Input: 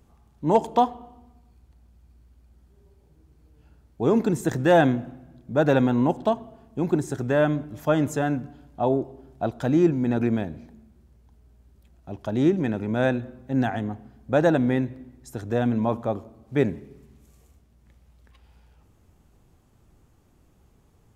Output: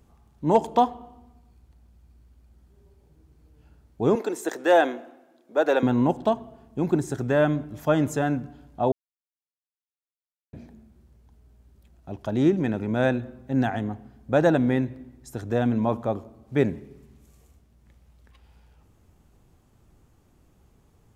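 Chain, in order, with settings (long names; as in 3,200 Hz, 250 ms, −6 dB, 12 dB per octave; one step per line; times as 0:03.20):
0:04.15–0:05.83: high-pass filter 350 Hz 24 dB per octave
0:08.92–0:10.53: silence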